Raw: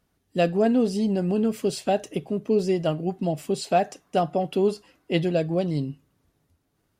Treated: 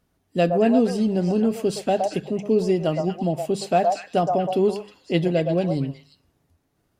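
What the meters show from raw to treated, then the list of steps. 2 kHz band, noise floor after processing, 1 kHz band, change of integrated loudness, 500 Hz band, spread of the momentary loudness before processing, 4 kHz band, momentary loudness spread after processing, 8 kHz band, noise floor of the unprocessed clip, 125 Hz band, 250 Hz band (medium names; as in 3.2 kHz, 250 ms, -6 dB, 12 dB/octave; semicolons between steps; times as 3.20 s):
+1.5 dB, -71 dBFS, +3.5 dB, +2.5 dB, +2.5 dB, 7 LU, +1.0 dB, 7 LU, +0.5 dB, -73 dBFS, +2.5 dB, +2.5 dB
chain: bass shelf 460 Hz +3.5 dB; hum notches 50/100/150/200 Hz; repeats whose band climbs or falls 117 ms, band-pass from 780 Hz, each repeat 1.4 oct, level -1 dB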